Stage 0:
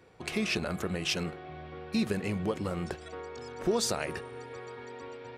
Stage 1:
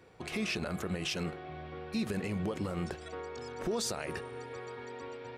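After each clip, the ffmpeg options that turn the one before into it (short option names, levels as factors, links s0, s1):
-af "alimiter=level_in=1.12:limit=0.0631:level=0:latency=1:release=66,volume=0.891"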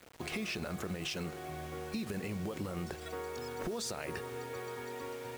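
-af "acompressor=threshold=0.0158:ratio=6,acrusher=bits=8:mix=0:aa=0.000001,volume=1.19"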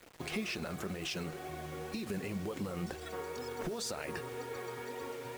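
-af "flanger=delay=1.8:depth=6.1:regen=49:speed=2:shape=triangular,volume=1.58"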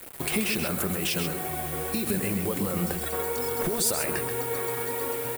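-af "aecho=1:1:131:0.422,aexciter=amount=3.4:drive=8.3:freq=8400,volume=2.82"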